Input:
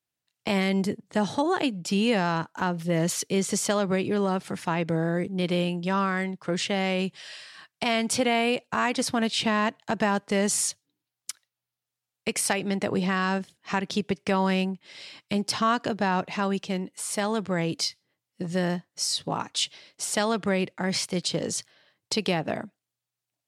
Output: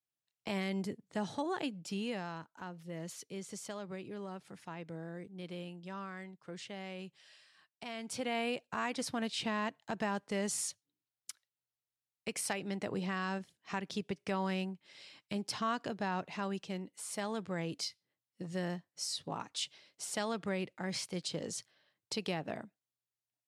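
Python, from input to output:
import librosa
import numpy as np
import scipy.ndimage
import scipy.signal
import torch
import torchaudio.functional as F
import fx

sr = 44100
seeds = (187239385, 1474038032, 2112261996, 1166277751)

y = fx.gain(x, sr, db=fx.line((1.73, -11.5), (2.48, -18.5), (7.94, -18.5), (8.38, -11.0)))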